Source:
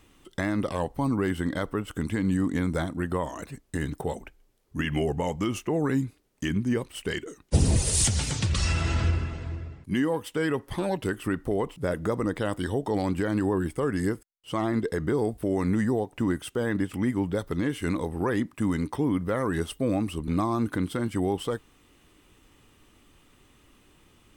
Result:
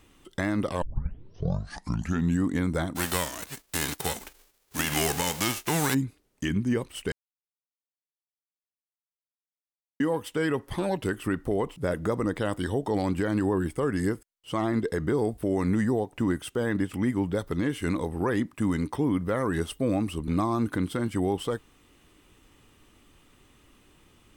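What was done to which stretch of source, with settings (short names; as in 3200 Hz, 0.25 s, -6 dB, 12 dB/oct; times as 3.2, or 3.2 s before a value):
0.82 tape start 1.61 s
2.95–5.93 spectral whitening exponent 0.3
7.12–10 mute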